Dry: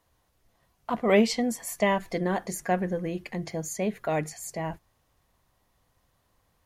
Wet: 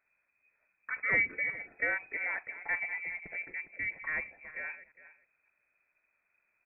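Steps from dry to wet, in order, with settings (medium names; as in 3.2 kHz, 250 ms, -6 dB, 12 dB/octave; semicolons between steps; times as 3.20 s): chunks repeated in reverse 188 ms, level -13 dB; frequency inversion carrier 2.5 kHz; echo from a far wall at 70 m, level -16 dB; trim -8 dB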